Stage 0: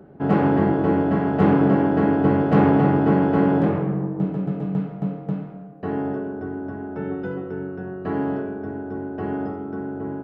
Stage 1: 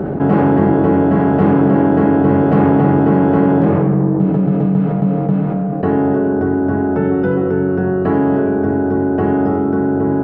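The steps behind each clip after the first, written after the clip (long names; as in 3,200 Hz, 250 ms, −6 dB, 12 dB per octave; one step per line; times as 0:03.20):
high-shelf EQ 2,600 Hz −9.5 dB
envelope flattener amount 70%
level +3 dB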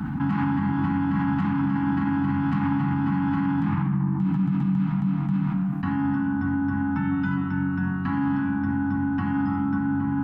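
elliptic band-stop filter 270–890 Hz, stop band 50 dB
brickwall limiter −11.5 dBFS, peak gain reduction 7.5 dB
high-shelf EQ 2,300 Hz +8 dB
level −5 dB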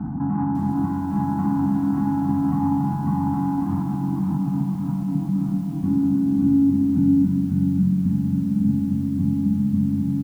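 double-tracking delay 24 ms −14 dB
low-pass filter sweep 630 Hz → 200 Hz, 0:04.52–0:07.77
feedback echo at a low word length 547 ms, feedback 55%, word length 8 bits, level −6.5 dB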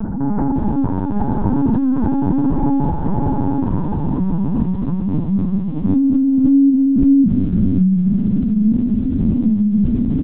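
upward compression, threshold −29 dBFS
linear-prediction vocoder at 8 kHz pitch kept
level +5.5 dB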